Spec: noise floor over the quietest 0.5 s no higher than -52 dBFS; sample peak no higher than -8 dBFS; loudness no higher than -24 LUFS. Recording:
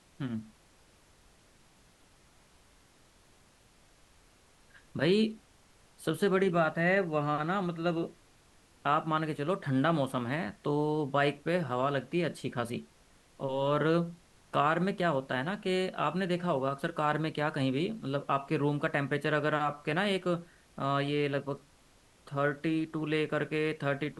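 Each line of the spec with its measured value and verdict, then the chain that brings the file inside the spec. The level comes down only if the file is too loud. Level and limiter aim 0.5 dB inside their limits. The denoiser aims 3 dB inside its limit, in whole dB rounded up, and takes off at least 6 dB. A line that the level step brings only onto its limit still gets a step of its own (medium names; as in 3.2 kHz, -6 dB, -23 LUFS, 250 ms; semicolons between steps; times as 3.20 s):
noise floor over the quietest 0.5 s -62 dBFS: pass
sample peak -13.5 dBFS: pass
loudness -31.0 LUFS: pass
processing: none needed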